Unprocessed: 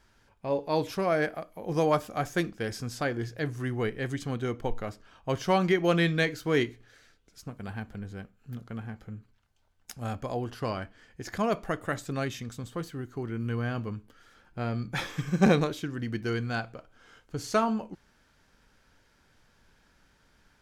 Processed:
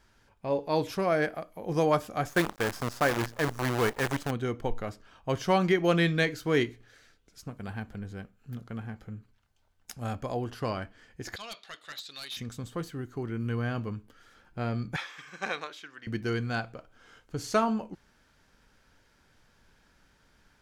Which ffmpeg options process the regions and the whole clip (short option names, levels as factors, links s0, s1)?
-filter_complex "[0:a]asettb=1/sr,asplit=3[s0][s1][s2];[s0]atrim=end=2.294[s3];[s1]atrim=start=2.29:end=4.31,asetpts=PTS-STARTPTS,afade=t=in:d=0.004:c=qsin,afade=t=out:st=2.016:d=0.004:c=qsin,acrusher=bits=6:dc=4:mix=0:aa=0.000001,equalizer=f=980:w=0.77:g=7.5[s4];[s2]atrim=start=4.306[s5];[s3][s4]acrossfade=d=0.004:c1=hsin:c2=qsin[s6];[s6][s5]acrossfade=d=0.004:c1=qsin:c2=hsin,asettb=1/sr,asplit=3[s7][s8][s9];[s7]atrim=end=11.364[s10];[s8]atrim=start=11.36:end=12.37,asetpts=PTS-STARTPTS,afade=t=in:d=0.004:c=qsin,afade=t=out:st=1.006:d=0.004:c=qsin,bandpass=f=3900:t=q:w=6.1,aeval=exprs='0.02*sin(PI/2*3.55*val(0)/0.02)':c=same[s11];[s9]atrim=start=12.366[s12];[s10][s11]acrossfade=d=0.004:c1=hsin:c2=qsin[s13];[s13][s12]acrossfade=d=0.004:c1=qsin:c2=hsin,asettb=1/sr,asplit=3[s14][s15][s16];[s14]atrim=end=14.964[s17];[s15]atrim=start=14.96:end=16.07,asetpts=PTS-STARTPTS,afade=t=in:d=0.004:c=qsin,afade=t=out:st=1.106:d=0.004:c=qsin,highpass=1200,aemphasis=mode=reproduction:type=bsi[s18];[s16]atrim=start=16.066[s19];[s17][s18]acrossfade=d=0.004:c1=hsin:c2=qsin[s20];[s20][s19]acrossfade=d=0.004:c1=qsin:c2=hsin"